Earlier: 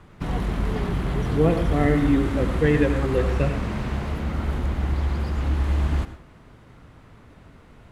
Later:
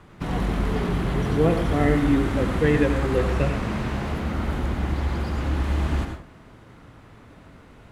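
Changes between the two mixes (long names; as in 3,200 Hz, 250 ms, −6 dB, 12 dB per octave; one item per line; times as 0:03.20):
background: send +9.0 dB
master: add low-shelf EQ 96 Hz −5.5 dB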